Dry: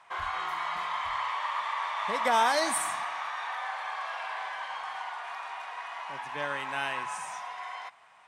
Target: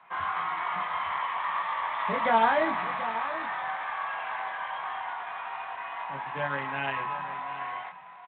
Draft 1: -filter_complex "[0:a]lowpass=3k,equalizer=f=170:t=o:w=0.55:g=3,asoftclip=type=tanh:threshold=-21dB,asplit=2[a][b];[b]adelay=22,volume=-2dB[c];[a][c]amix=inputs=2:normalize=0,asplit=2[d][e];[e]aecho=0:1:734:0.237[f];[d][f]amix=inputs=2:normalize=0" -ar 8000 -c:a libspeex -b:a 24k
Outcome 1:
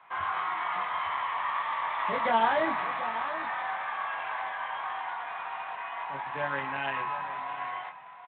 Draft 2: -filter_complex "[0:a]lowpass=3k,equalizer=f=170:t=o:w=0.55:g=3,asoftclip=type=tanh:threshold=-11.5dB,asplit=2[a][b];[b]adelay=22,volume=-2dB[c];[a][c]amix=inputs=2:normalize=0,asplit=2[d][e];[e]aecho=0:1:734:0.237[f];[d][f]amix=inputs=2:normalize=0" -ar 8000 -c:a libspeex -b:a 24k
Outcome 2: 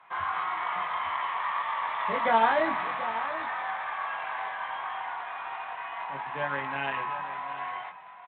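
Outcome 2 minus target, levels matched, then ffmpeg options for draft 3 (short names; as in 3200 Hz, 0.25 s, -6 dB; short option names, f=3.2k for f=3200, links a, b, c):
125 Hz band -3.5 dB
-filter_complex "[0:a]lowpass=3k,equalizer=f=170:t=o:w=0.55:g=9.5,asoftclip=type=tanh:threshold=-11.5dB,asplit=2[a][b];[b]adelay=22,volume=-2dB[c];[a][c]amix=inputs=2:normalize=0,asplit=2[d][e];[e]aecho=0:1:734:0.237[f];[d][f]amix=inputs=2:normalize=0" -ar 8000 -c:a libspeex -b:a 24k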